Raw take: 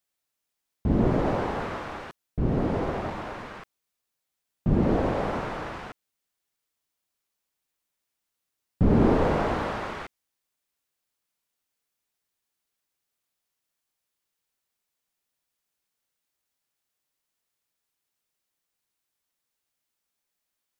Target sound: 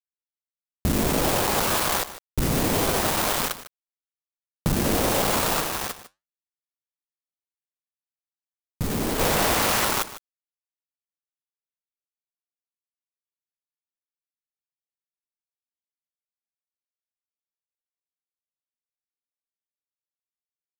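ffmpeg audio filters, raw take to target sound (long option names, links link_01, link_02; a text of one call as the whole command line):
ffmpeg -i in.wav -filter_complex "[0:a]afwtdn=0.02,highshelf=frequency=4300:gain=8.5,bandreject=frequency=60:width_type=h:width=6,bandreject=frequency=120:width_type=h:width=6,bandreject=frequency=180:width_type=h:width=6,bandreject=frequency=240:width_type=h:width=6,bandreject=frequency=300:width_type=h:width=6,bandreject=frequency=360:width_type=h:width=6,bandreject=frequency=420:width_type=h:width=6,acompressor=threshold=-38dB:ratio=4,aeval=exprs='val(0)*gte(abs(val(0)),0.00794)':channel_layout=same,crystalizer=i=6.5:c=0,aeval=exprs='0.355*sin(PI/2*5.62*val(0)/0.355)':channel_layout=same,asplit=3[link_01][link_02][link_03];[link_01]afade=type=out:start_time=5.6:duration=0.02[link_04];[link_02]flanger=delay=3.1:depth=8.7:regen=-74:speed=1.1:shape=triangular,afade=type=in:start_time=5.6:duration=0.02,afade=type=out:start_time=9.18:duration=0.02[link_05];[link_03]afade=type=in:start_time=9.18:duration=0.02[link_06];[link_04][link_05][link_06]amix=inputs=3:normalize=0,aecho=1:1:151:0.178,volume=-4dB" out.wav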